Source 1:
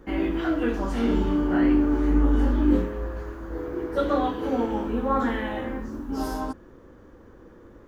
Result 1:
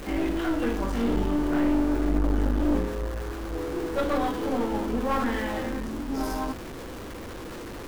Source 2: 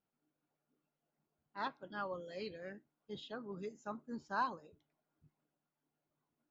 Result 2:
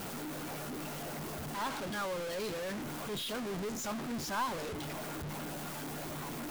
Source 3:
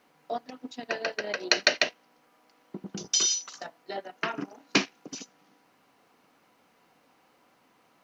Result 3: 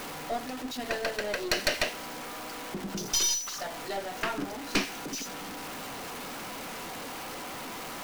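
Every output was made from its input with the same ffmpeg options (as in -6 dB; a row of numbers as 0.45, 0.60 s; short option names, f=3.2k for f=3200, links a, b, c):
-af "aeval=exprs='val(0)+0.5*0.0282*sgn(val(0))':c=same,aeval=exprs='(tanh(8.91*val(0)+0.55)-tanh(0.55))/8.91':c=same"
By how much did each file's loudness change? -2.5, +5.5, -4.0 LU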